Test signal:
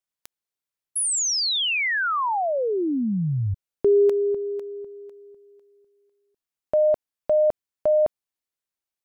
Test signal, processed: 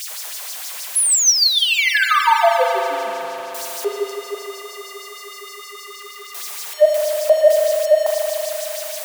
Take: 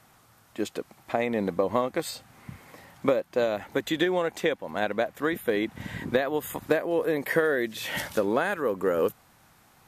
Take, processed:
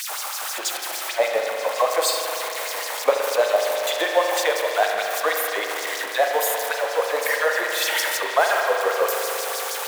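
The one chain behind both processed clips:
converter with a step at zero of −27.5 dBFS
dynamic equaliser 820 Hz, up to +4 dB, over −31 dBFS, Q 1.1
auto-filter high-pass sine 6.4 Hz 540–5,500 Hz
bass and treble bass −14 dB, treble +5 dB
spring reverb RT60 3.8 s, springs 38 ms, chirp 45 ms, DRR 1 dB

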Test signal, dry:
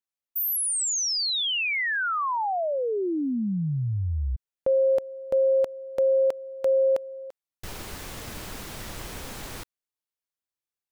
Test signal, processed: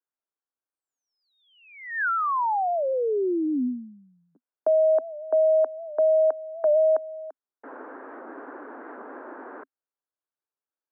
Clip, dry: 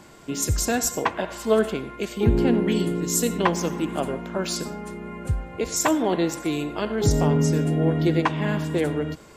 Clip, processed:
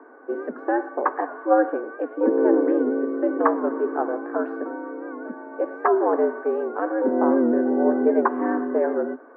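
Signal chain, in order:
Chebyshev band-pass filter 160–1,500 Hz, order 4
frequency shifter +98 Hz
wow of a warped record 78 rpm, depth 100 cents
level +2.5 dB

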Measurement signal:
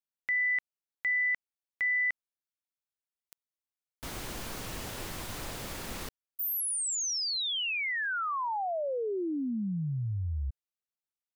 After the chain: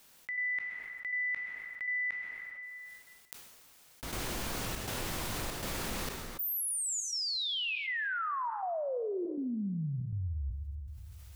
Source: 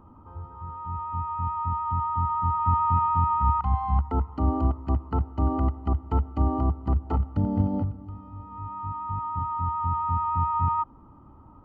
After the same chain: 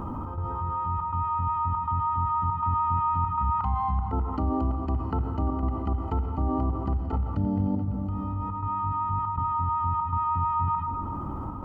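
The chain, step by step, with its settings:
gate pattern "xx.xxxxx.xxx" 120 BPM −12 dB
dense smooth reverb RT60 1.2 s, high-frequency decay 0.85×, pre-delay 0 ms, DRR 11 dB
envelope flattener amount 70%
level −5.5 dB

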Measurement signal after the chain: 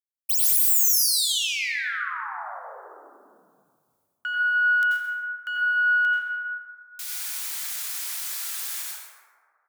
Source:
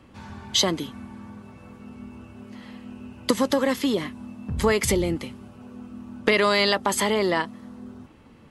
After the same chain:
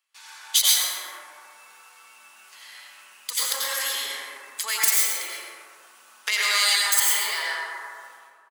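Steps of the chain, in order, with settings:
stylus tracing distortion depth 0.054 ms
noise gate with hold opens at −40 dBFS
first difference
repeating echo 129 ms, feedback 15%, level −11.5 dB
dense smooth reverb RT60 2 s, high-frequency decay 0.3×, pre-delay 75 ms, DRR −5 dB
in parallel at 0 dB: downward compressor, threshold −40 dBFS
on the sum: high-pass filter 1,000 Hz 12 dB per octave
every ending faded ahead of time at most 200 dB per second
level +5.5 dB

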